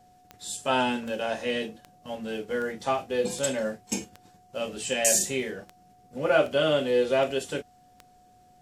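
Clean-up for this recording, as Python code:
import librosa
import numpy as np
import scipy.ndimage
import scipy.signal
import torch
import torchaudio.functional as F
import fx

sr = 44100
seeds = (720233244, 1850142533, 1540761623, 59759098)

y = fx.fix_declick_ar(x, sr, threshold=10.0)
y = fx.notch(y, sr, hz=730.0, q=30.0)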